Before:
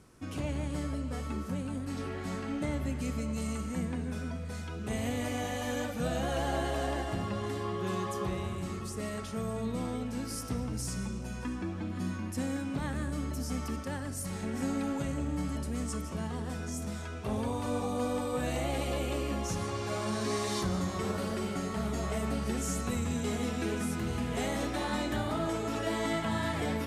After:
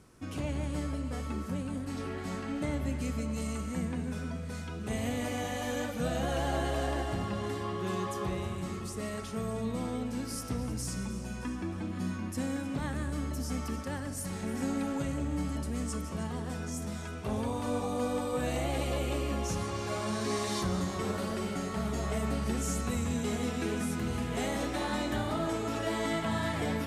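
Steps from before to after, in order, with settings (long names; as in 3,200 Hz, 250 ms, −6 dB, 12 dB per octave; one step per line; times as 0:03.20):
echo with a time of its own for lows and highs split 910 Hz, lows 188 ms, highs 310 ms, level −15 dB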